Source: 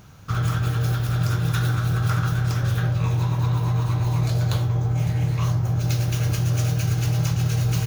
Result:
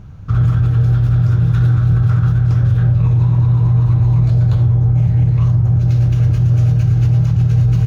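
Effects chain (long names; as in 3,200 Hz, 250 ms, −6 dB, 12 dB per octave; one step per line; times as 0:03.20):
RIAA equalisation playback
brickwall limiter −6.5 dBFS, peak gain reduction 5.5 dB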